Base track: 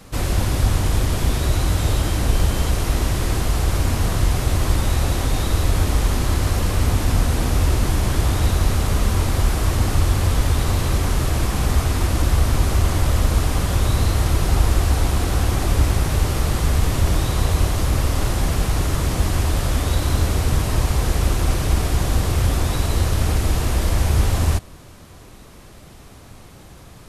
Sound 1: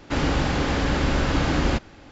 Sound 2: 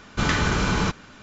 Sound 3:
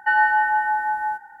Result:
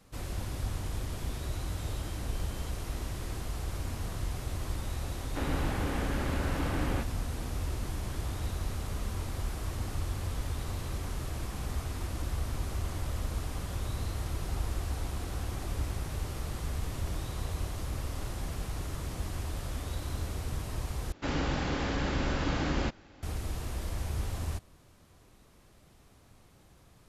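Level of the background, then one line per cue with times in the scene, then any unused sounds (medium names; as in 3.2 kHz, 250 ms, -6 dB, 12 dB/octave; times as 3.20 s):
base track -16.5 dB
5.25 s: add 1 -10.5 dB + low-pass 2.9 kHz
21.12 s: replace with 1 -8.5 dB
not used: 2, 3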